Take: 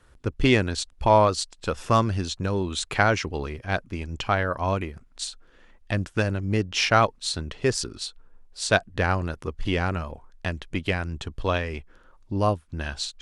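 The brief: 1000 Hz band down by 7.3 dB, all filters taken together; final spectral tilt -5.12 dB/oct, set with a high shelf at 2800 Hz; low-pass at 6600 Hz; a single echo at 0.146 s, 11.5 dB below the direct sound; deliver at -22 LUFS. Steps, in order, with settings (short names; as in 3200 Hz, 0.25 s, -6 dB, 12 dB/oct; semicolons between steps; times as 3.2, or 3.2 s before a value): LPF 6600 Hz; bell 1000 Hz -9 dB; high shelf 2800 Hz -5 dB; echo 0.146 s -11.5 dB; gain +6 dB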